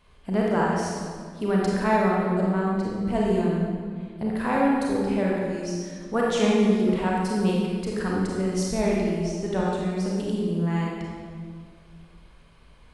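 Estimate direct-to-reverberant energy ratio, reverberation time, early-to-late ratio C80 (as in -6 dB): -4.5 dB, 1.9 s, 1.0 dB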